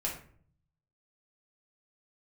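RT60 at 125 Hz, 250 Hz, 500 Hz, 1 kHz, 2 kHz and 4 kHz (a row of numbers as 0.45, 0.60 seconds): 1.1, 0.80, 0.60, 0.45, 0.45, 0.30 seconds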